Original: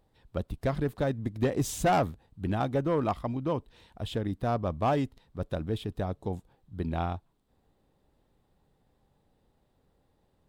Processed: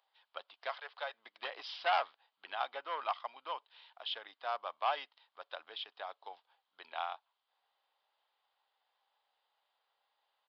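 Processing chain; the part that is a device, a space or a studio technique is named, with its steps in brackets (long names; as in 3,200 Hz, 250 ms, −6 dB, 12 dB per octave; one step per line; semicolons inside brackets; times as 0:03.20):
0:00.69–0:01.14: Butterworth high-pass 440 Hz 48 dB per octave
musical greeting card (downsampling to 11,025 Hz; high-pass filter 820 Hz 24 dB per octave; parametric band 3,100 Hz +6.5 dB 0.28 octaves)
notch filter 1,800 Hz, Q 26
level −1 dB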